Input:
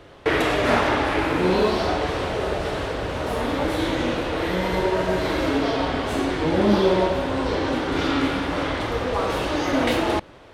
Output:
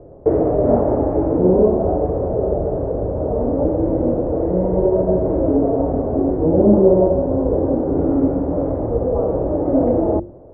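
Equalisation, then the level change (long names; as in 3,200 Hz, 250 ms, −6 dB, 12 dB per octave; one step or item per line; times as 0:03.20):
Chebyshev low-pass filter 610 Hz, order 3
high-frequency loss of the air 150 metres
mains-hum notches 50/100/150/200/250/300/350 Hz
+8.0 dB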